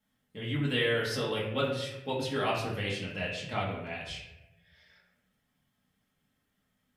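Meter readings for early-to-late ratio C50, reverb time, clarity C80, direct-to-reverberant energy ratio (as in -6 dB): 3.5 dB, 0.95 s, 6.0 dB, -6.0 dB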